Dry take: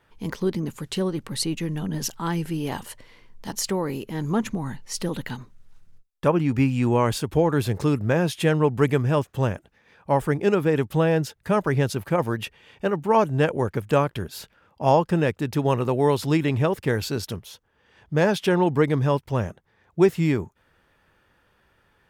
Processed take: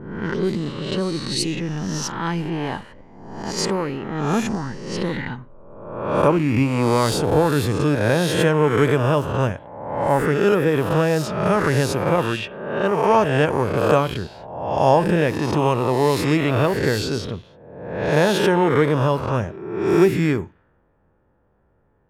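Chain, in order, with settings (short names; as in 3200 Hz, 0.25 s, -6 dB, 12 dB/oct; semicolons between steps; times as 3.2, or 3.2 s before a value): spectral swells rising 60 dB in 1.14 s; low-pass opened by the level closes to 690 Hz, open at -16.5 dBFS; on a send: reverb, pre-delay 46 ms, DRR 18.5 dB; on the sum: gain +1 dB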